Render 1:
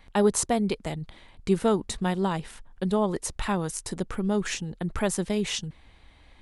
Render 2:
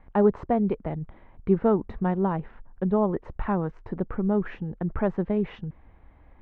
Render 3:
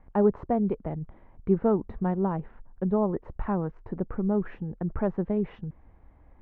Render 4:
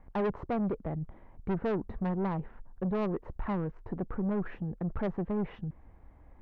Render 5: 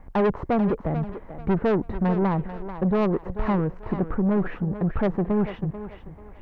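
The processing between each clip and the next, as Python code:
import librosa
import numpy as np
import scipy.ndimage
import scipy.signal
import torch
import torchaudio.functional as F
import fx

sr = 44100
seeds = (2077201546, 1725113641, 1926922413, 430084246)

y1 = scipy.signal.sosfilt(scipy.signal.bessel(4, 1200.0, 'lowpass', norm='mag', fs=sr, output='sos'), x)
y1 = y1 * 10.0 ** (2.0 / 20.0)
y2 = fx.high_shelf(y1, sr, hz=2200.0, db=-11.5)
y2 = y2 * 10.0 ** (-1.5 / 20.0)
y3 = 10.0 ** (-26.5 / 20.0) * np.tanh(y2 / 10.0 ** (-26.5 / 20.0))
y4 = fx.echo_thinned(y3, sr, ms=439, feedback_pct=34, hz=290.0, wet_db=-10)
y4 = y4 * 10.0 ** (9.0 / 20.0)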